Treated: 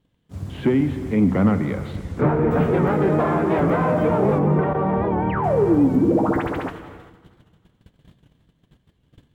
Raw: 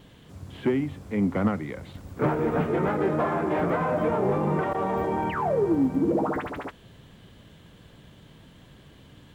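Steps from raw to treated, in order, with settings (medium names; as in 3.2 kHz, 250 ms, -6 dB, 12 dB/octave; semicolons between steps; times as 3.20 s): in parallel at -2 dB: peak limiter -22 dBFS, peak gain reduction 10 dB; 1.92–2.51 s: on the sum: low-pass that closes with the level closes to 2.3 kHz, closed at -19 dBFS; bass shelf 280 Hz +6.5 dB; gate -37 dBFS, range -27 dB; 4.39–5.44 s: distance through air 360 m; multi-head delay 79 ms, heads first and second, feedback 62%, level -21 dB; gated-style reverb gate 420 ms flat, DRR 11 dB; warped record 78 rpm, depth 100 cents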